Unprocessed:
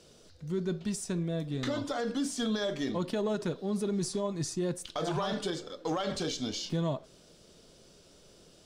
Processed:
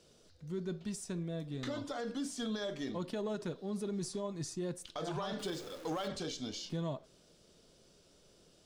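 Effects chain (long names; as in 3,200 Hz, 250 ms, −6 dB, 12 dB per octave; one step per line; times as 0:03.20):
0:05.39–0:06.08: converter with a step at zero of −40 dBFS
level −6.5 dB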